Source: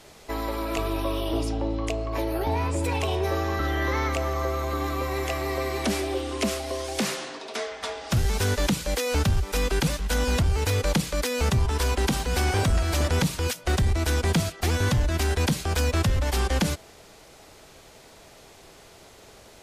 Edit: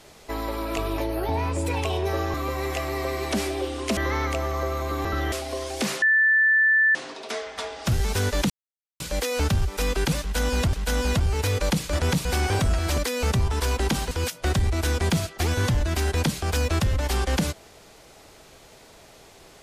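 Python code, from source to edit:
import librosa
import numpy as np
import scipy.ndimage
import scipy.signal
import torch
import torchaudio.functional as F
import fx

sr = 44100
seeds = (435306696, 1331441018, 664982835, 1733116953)

y = fx.edit(x, sr, fx.cut(start_s=0.98, length_s=1.18),
    fx.swap(start_s=3.52, length_s=0.27, other_s=4.87, other_length_s=1.63),
    fx.insert_tone(at_s=7.2, length_s=0.93, hz=1760.0, db=-15.5),
    fx.insert_silence(at_s=8.75, length_s=0.5),
    fx.repeat(start_s=9.96, length_s=0.52, count=2),
    fx.swap(start_s=11.16, length_s=1.13, other_s=13.02, other_length_s=0.32), tone=tone)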